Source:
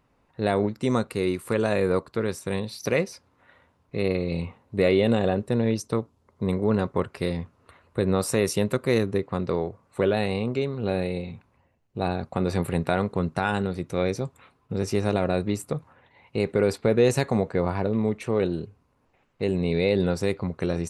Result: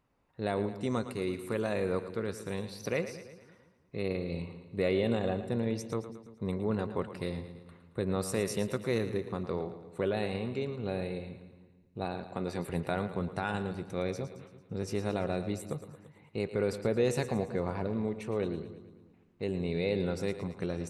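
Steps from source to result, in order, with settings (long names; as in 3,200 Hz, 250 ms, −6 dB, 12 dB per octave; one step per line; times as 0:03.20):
0:12.05–0:12.70: high-pass filter 170 Hz 6 dB per octave
echo with a time of its own for lows and highs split 340 Hz, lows 169 ms, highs 112 ms, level −11.5 dB
level −8.5 dB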